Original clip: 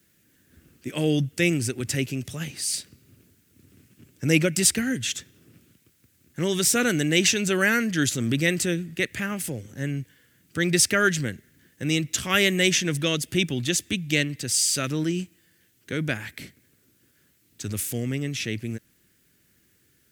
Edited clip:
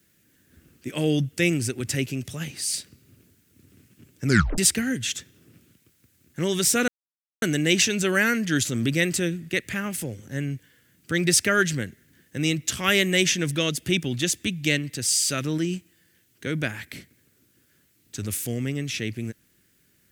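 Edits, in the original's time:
4.26 s: tape stop 0.32 s
6.88 s: insert silence 0.54 s

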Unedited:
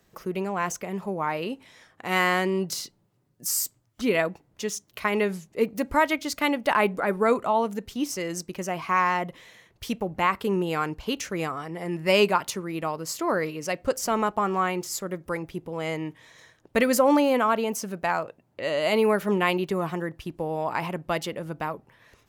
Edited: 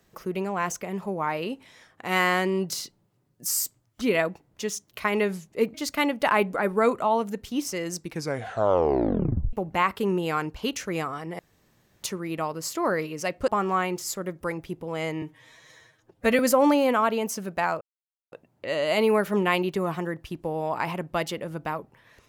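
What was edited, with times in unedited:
5.74–6.18 s: delete
8.40 s: tape stop 1.57 s
11.83–12.47 s: room tone
13.92–14.33 s: delete
16.07–16.85 s: stretch 1.5×
18.27 s: insert silence 0.51 s

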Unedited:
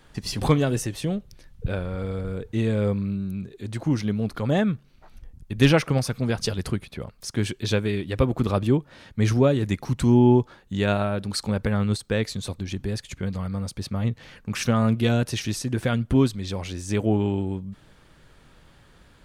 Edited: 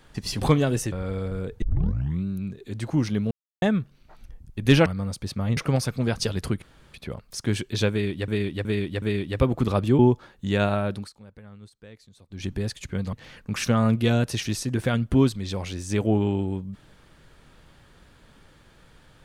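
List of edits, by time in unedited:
0.92–1.85 s: delete
2.55 s: tape start 0.62 s
4.24–4.55 s: mute
6.84 s: insert room tone 0.32 s
7.81–8.18 s: loop, 4 plays
8.78–10.27 s: delete
11.22–12.73 s: dip -22.5 dB, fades 0.16 s
13.41–14.12 s: move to 5.79 s

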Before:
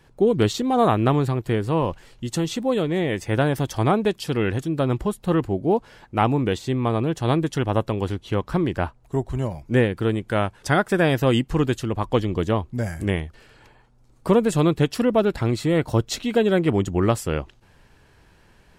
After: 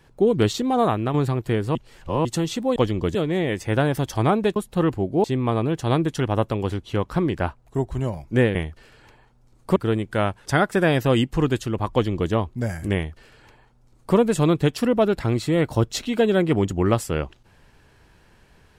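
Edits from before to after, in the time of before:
0.68–1.14 s: fade out, to -7 dB
1.75–2.25 s: reverse
4.17–5.07 s: delete
5.75–6.62 s: delete
12.10–12.49 s: copy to 2.76 s
13.12–14.33 s: copy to 9.93 s

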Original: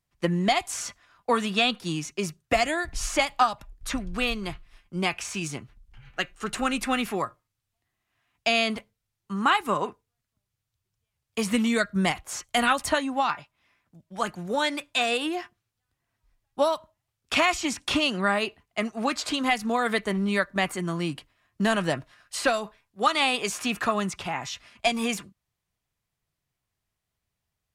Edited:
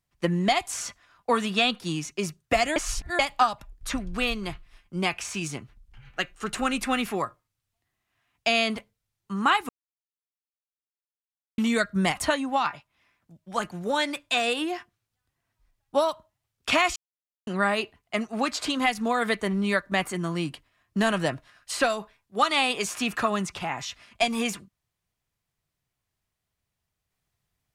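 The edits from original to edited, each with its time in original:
2.76–3.19 s: reverse
9.69–11.58 s: mute
12.17–12.81 s: delete
17.60–18.11 s: mute

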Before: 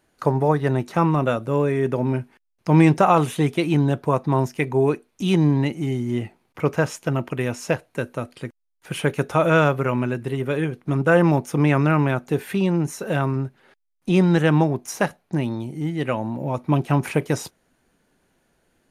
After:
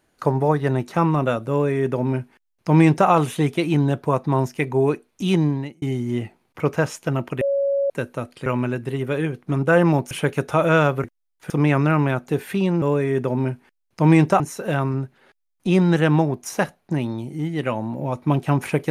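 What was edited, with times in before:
1.50–3.08 s: copy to 12.82 s
5.35–5.82 s: fade out
7.41–7.90 s: bleep 557 Hz -17.5 dBFS
8.46–8.92 s: swap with 9.85–11.50 s

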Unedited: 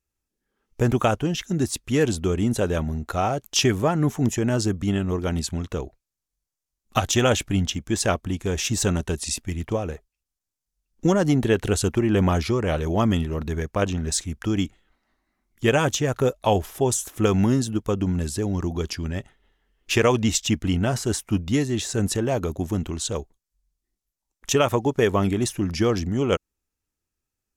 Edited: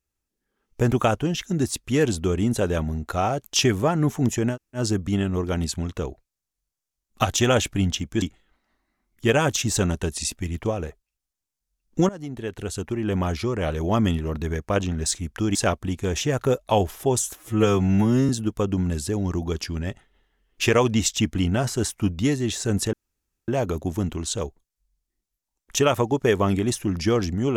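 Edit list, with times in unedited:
4.53 s: insert room tone 0.25 s, crossfade 0.10 s
7.97–8.63 s: swap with 14.61–15.96 s
11.15–13.12 s: fade in, from -18.5 dB
17.12–17.58 s: stretch 2×
22.22 s: insert room tone 0.55 s

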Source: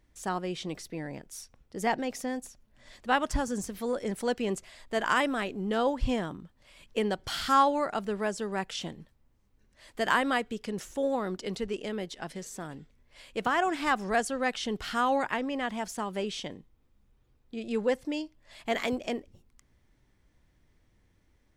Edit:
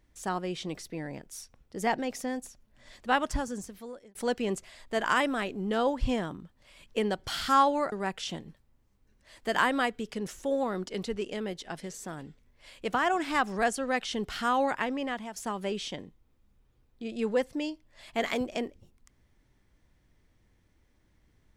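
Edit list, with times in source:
3.19–4.15 s: fade out
7.92–8.44 s: delete
15.55–15.88 s: fade out, to -10 dB

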